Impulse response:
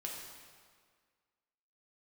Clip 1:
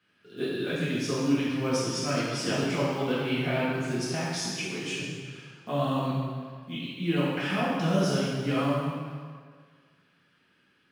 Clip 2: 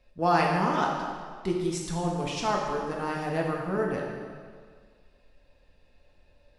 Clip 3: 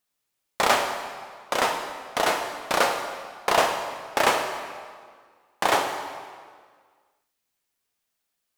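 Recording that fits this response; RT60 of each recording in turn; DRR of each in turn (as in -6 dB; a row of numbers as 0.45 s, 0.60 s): 2; 1.8 s, 1.8 s, 1.8 s; -9.5 dB, -2.0 dB, 3.0 dB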